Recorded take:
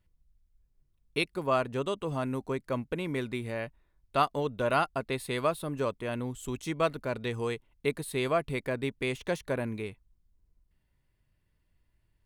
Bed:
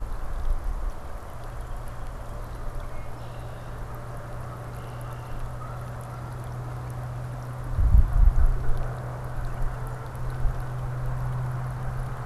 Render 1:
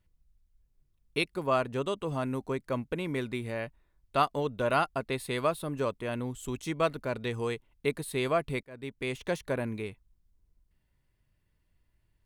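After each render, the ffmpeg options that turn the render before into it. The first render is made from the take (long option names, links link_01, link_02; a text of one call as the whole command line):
ffmpeg -i in.wav -filter_complex "[0:a]asplit=2[link_01][link_02];[link_01]atrim=end=8.63,asetpts=PTS-STARTPTS,afade=type=out:start_time=8.626:duration=0.004:curve=hsin[link_03];[link_02]atrim=start=8.63,asetpts=PTS-STARTPTS,afade=type=in:duration=0.78:curve=qsin[link_04];[link_03][link_04]concat=n=2:v=0:a=1" out.wav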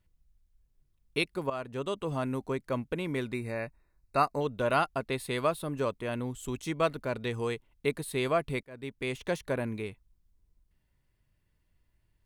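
ffmpeg -i in.wav -filter_complex "[0:a]asettb=1/sr,asplit=3[link_01][link_02][link_03];[link_01]atrim=end=3.344[link_04];[link_02]atrim=start=3.34:end=4.41,asetpts=PTS-STARTPTS,afade=type=in:duration=0.004:curve=qsin,afade=type=out:start_time=1.066:duration=0.004:curve=qsin,asuperstop=centerf=3200:order=20:qfactor=3.3[link_05];[link_03]atrim=start=4.406[link_06];[link_04][link_05]acrossfade=duration=0.004:curve1=hsin:curve2=qsin[link_07];[link_07][link_06]acrossfade=duration=0.004:curve1=qsin:curve2=hsin,asplit=2[link_08][link_09];[link_08]atrim=end=1.5,asetpts=PTS-STARTPTS,afade=type=out:start_time=1.496:duration=0.004:curve=hsin:silence=0.223872[link_10];[link_09]atrim=start=1.5,asetpts=PTS-STARTPTS,afade=type=in:duration=0.49:silence=0.223872[link_11];[link_10][link_11]concat=n=2:v=0:a=1" out.wav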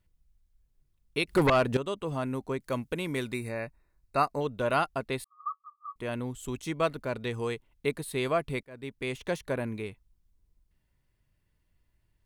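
ffmpeg -i in.wav -filter_complex "[0:a]asettb=1/sr,asplit=3[link_01][link_02][link_03];[link_01]atrim=end=1.284[link_04];[link_02]atrim=start=1.28:end=1.77,asetpts=PTS-STARTPTS,afade=type=in:duration=0.004:curve=qsin,afade=type=out:start_time=0.486:duration=0.004:curve=qsin,aeval=exprs='0.141*sin(PI/2*3.55*val(0)/0.141)':channel_layout=same[link_05];[link_03]atrim=start=1.766[link_06];[link_04][link_05]acrossfade=duration=0.004:curve1=hsin:curve2=qsin[link_07];[link_07][link_06]acrossfade=duration=0.004:curve1=qsin:curve2=hsin,asettb=1/sr,asplit=3[link_08][link_09][link_10];[link_08]atrim=end=2.614[link_11];[link_09]atrim=start=2.61:end=3.49,asetpts=PTS-STARTPTS,afade=type=in:duration=0.004:curve=qsin,afade=type=out:start_time=0.876:duration=0.004:curve=qsin,highshelf=frequency=3700:gain=9[link_12];[link_10]atrim=start=3.486[link_13];[link_11][link_12]acrossfade=duration=0.004:curve1=hsin:curve2=qsin[link_14];[link_14][link_13]acrossfade=duration=0.004:curve1=qsin:curve2=hsin,asettb=1/sr,asplit=3[link_15][link_16][link_17];[link_15]atrim=end=5.244[link_18];[link_16]atrim=start=5.24:end=5.96,asetpts=PTS-STARTPTS,afade=type=in:duration=0.004:curve=qsin,afade=type=out:start_time=0.716:duration=0.004:curve=qsin,asuperpass=centerf=1200:order=20:qfactor=7.2[link_19];[link_17]atrim=start=5.956[link_20];[link_18][link_19]acrossfade=duration=0.004:curve1=hsin:curve2=qsin[link_21];[link_21][link_20]acrossfade=duration=0.004:curve1=qsin:curve2=hsin" out.wav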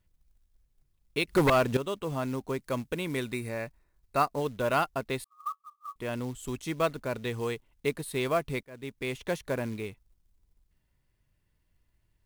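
ffmpeg -i in.wav -af "acrusher=bits=5:mode=log:mix=0:aa=0.000001" out.wav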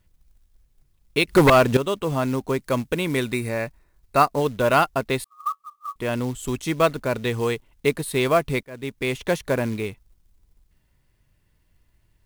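ffmpeg -i in.wav -af "volume=8.5dB" out.wav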